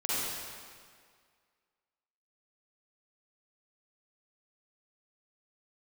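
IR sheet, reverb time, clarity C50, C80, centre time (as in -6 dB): 1.9 s, -7.0 dB, -2.5 dB, 0.158 s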